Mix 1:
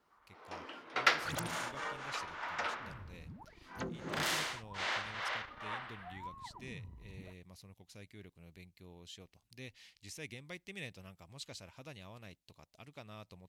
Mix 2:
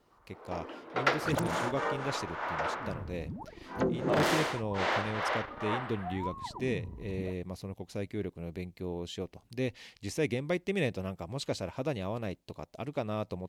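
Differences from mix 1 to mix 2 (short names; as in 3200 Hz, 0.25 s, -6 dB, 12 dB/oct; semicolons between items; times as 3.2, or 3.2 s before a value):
first sound -11.5 dB; second sound -6.5 dB; master: remove passive tone stack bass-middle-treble 5-5-5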